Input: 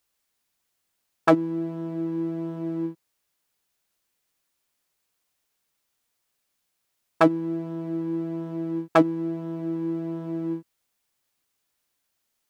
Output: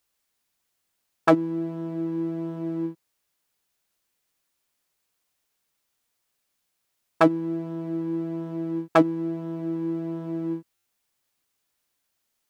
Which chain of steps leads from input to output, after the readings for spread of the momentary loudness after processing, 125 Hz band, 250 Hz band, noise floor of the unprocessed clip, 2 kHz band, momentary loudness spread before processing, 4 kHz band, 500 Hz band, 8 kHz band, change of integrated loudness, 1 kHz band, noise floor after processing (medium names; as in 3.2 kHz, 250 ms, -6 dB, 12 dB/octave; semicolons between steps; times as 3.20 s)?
10 LU, 0.0 dB, 0.0 dB, -77 dBFS, 0.0 dB, 10 LU, 0.0 dB, 0.0 dB, no reading, 0.0 dB, 0.0 dB, -77 dBFS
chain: buffer glitch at 10.75 s